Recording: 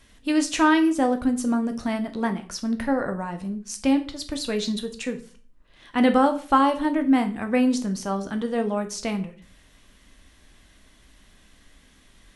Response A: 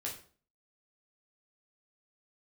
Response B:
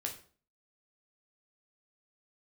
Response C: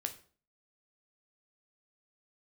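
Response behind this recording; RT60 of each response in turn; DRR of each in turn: C; 0.45 s, 0.45 s, 0.45 s; -3.0 dB, 1.0 dB, 6.0 dB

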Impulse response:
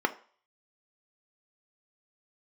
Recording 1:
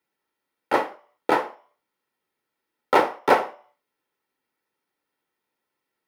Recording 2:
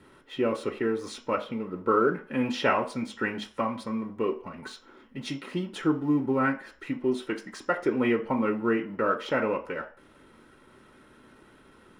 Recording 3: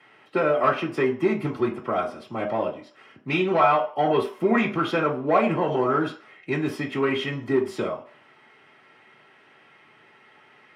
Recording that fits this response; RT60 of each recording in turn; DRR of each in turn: 1; 0.45 s, 0.45 s, 0.45 s; 6.5 dB, 1.0 dB, -4.0 dB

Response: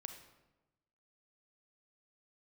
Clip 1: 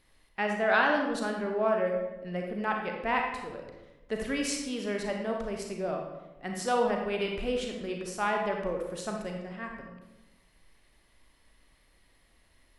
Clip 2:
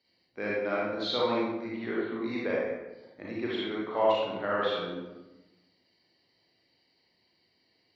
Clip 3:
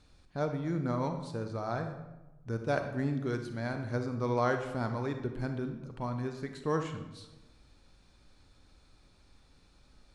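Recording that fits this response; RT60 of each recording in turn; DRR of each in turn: 3; 1.1 s, 1.1 s, 1.1 s; 1.5 dB, -6.0 dB, 6.0 dB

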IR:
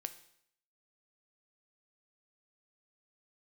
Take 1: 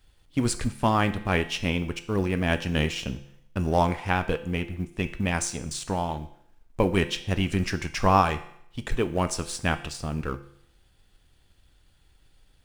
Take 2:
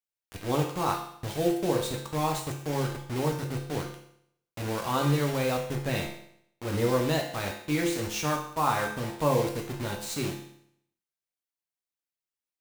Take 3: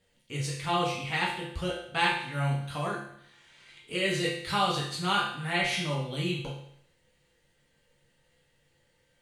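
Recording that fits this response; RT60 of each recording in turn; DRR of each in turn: 1; 0.70 s, 0.70 s, 0.70 s; 9.5 dB, -0.5 dB, -5.5 dB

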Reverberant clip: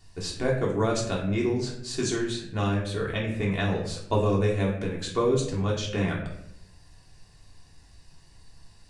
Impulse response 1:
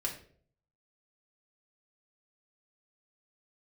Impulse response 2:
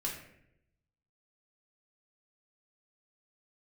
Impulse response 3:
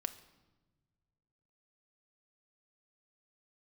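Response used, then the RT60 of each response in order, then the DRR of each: 2; 0.50 s, 0.75 s, 1.2 s; -2.5 dB, -3.5 dB, 8.5 dB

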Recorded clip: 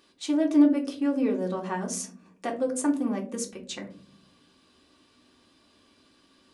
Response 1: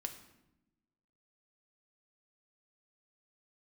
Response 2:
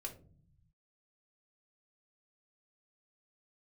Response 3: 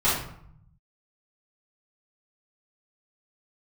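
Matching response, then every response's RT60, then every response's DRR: 2; 0.90 s, 0.45 s, 0.65 s; 4.5 dB, 0.5 dB, -13.5 dB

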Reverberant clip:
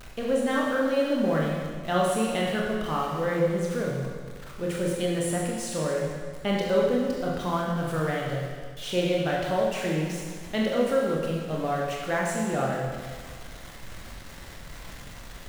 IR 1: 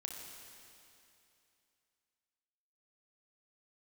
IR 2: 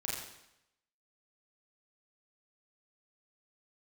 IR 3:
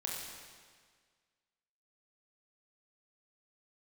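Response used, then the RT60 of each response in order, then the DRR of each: 3; 2.8 s, 0.85 s, 1.7 s; 1.0 dB, -5.5 dB, -3.0 dB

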